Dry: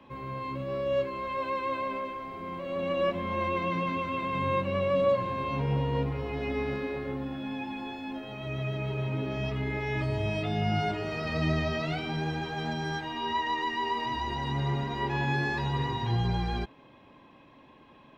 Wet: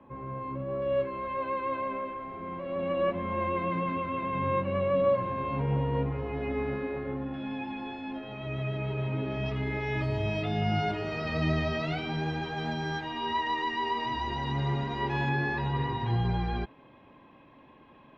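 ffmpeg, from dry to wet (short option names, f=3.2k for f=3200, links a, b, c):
-af "asetnsamples=n=441:p=0,asendcmd='0.82 lowpass f 2200;7.34 lowpass f 3600;9.46 lowpass f 5300;15.29 lowpass f 3000',lowpass=1.4k"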